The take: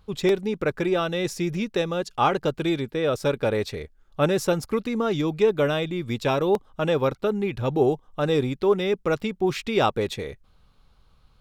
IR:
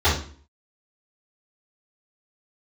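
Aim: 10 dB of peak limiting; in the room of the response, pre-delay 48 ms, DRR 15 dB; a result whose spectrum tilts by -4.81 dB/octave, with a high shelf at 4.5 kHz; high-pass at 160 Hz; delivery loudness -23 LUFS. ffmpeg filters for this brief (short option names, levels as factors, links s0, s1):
-filter_complex "[0:a]highpass=160,highshelf=f=4500:g=-4,alimiter=limit=0.141:level=0:latency=1,asplit=2[s0][s1];[1:a]atrim=start_sample=2205,adelay=48[s2];[s1][s2]afir=irnorm=-1:irlink=0,volume=0.0188[s3];[s0][s3]amix=inputs=2:normalize=0,volume=1.68"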